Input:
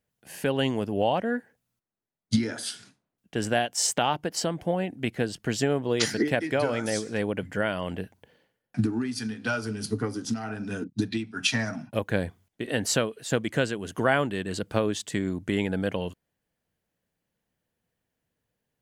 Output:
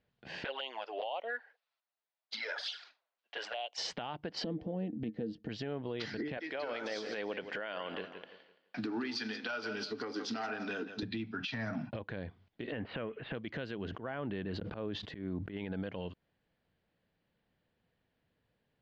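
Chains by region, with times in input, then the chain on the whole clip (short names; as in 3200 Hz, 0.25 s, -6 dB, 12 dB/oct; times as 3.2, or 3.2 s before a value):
0.44–3.78 HPF 610 Hz 24 dB/oct + high shelf 9100 Hz +10.5 dB + envelope flanger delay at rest 9.4 ms, full sweep at -26.5 dBFS
4.44–5.49 bell 1700 Hz -11.5 dB 2.1 oct + small resonant body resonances 220/310/460/1800 Hz, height 15 dB, ringing for 0.1 s
6.37–11.03 HPF 400 Hz + high shelf 5100 Hz +11 dB + warbling echo 0.169 s, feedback 32%, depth 63 cents, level -15 dB
12.72–13.35 G.711 law mismatch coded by mu + steep low-pass 2800 Hz
13.85–15.57 high shelf 2800 Hz -10.5 dB + auto swell 0.481 s + sustainer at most 83 dB/s
whole clip: steep low-pass 4500 Hz 36 dB/oct; compressor 12:1, threshold -34 dBFS; limiter -31.5 dBFS; gain +3 dB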